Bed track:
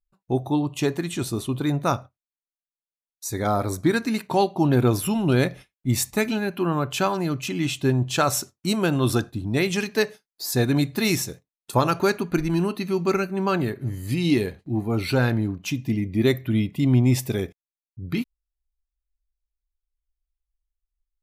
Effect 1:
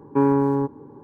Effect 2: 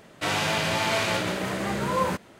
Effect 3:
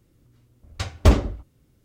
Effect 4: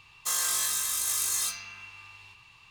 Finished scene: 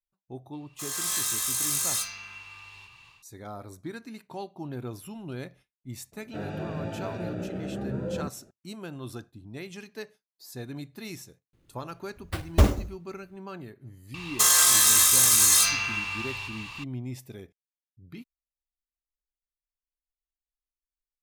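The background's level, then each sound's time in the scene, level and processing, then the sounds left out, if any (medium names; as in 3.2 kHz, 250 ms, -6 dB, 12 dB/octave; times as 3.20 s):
bed track -17.5 dB
0.53 s: add 4 -11 dB + level rider gain up to 13.5 dB
6.12 s: add 2 -2 dB + boxcar filter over 42 samples
11.53 s: add 3 -4 dB + sample-rate reducer 6.5 kHz
14.14 s: add 4 -8 dB + loudness maximiser +23 dB
not used: 1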